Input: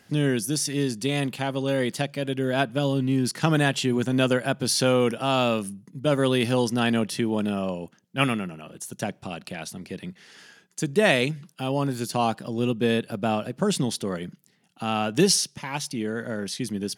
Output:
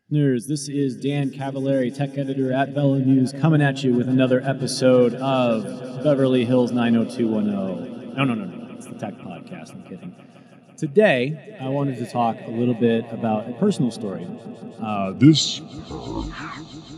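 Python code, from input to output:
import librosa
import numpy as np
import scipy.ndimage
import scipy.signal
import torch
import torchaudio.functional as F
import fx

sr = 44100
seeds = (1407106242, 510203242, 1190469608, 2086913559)

y = fx.tape_stop_end(x, sr, length_s=2.15)
y = fx.echo_swell(y, sr, ms=166, loudest=5, wet_db=-17.5)
y = fx.spectral_expand(y, sr, expansion=1.5)
y = F.gain(torch.from_numpy(y), 4.0).numpy()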